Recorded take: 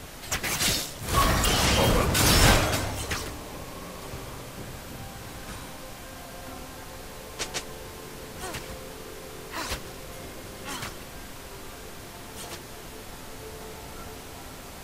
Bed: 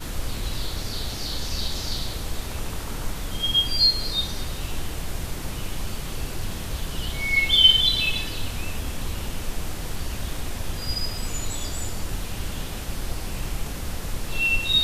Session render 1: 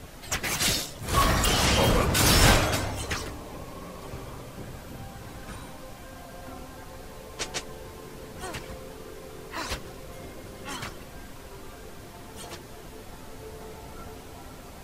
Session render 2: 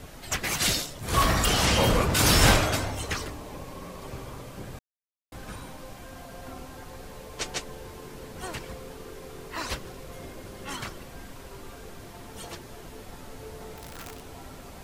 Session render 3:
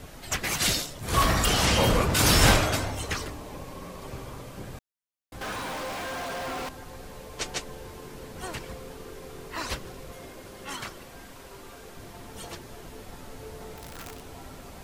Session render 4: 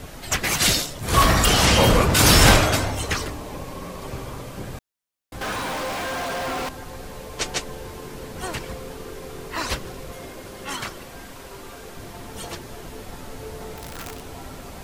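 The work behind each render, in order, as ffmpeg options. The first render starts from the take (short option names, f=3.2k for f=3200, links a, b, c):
-af "afftdn=nr=6:nf=-42"
-filter_complex "[0:a]asettb=1/sr,asplit=3[a][b][c];[a]atrim=end=13.774[d];[b]atrim=start=13.77:end=14.22,asetpts=PTS-STARTPTS,afade=t=in:d=0.004:c=qsin,afade=t=out:st=0.446:d=0.004:c=qsin,aeval=exprs='(mod(50.1*val(0)+1,2)-1)/50.1':c=same[e];[c]atrim=start=14.216[f];[d][e]acrossfade=d=0.004:c1=hsin:c2=qsin[g];[g][f]acrossfade=d=0.004:c1=qsin:c2=hsin,asplit=3[h][i][j];[h]atrim=end=4.79,asetpts=PTS-STARTPTS,afade=t=out:st=4.786:d=0.004:c=hsin[k];[i]atrim=start=4.79:end=5.32,asetpts=PTS-STARTPTS,volume=0[l];[j]atrim=start=5.32,asetpts=PTS-STARTPTS,afade=t=in:d=0.004:c=hsin[m];[k][l][m]concat=n=3:v=0:a=1"
-filter_complex "[0:a]asettb=1/sr,asplit=3[a][b][c];[a]atrim=end=5.414[d];[b]atrim=start=5.41:end=6.69,asetpts=PTS-STARTPTS,afade=t=in:d=0.004:c=qsin,afade=t=out:st=1.276:d=0.004:c=qsin,asplit=2[e][f];[f]highpass=f=720:p=1,volume=42dB,asoftclip=type=tanh:threshold=-26dB[g];[e][g]amix=inputs=2:normalize=0,lowpass=f=2.7k:p=1,volume=-6dB[h];[c]atrim=start=6.686[i];[d][h]acrossfade=d=0.004:c1=hsin:c2=qsin[j];[j][i]acrossfade=d=0.004:c1=qsin:c2=hsin,asettb=1/sr,asplit=3[k][l][m];[k]atrim=end=10.124[n];[l]atrim=start=10.12:end=11.97,asetpts=PTS-STARTPTS,afade=t=in:d=0.004:c=qsin,afade=t=out:st=1.846:d=0.004:c=qsin,lowshelf=f=220:g=-6.5[o];[m]atrim=start=11.966[p];[n][o]acrossfade=d=0.004:c1=hsin:c2=qsin[q];[q][p]acrossfade=d=0.004:c1=qsin:c2=hsin"
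-af "volume=6dB,alimiter=limit=-2dB:level=0:latency=1"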